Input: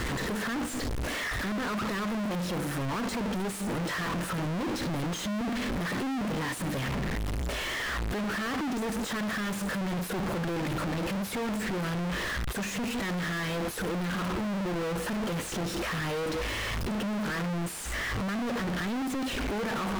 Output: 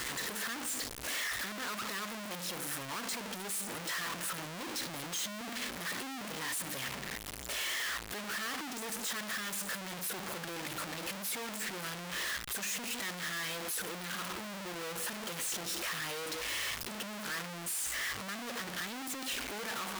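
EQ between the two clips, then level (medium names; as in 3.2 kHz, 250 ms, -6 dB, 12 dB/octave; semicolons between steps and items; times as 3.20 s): tilt EQ +3.5 dB/octave; -7.0 dB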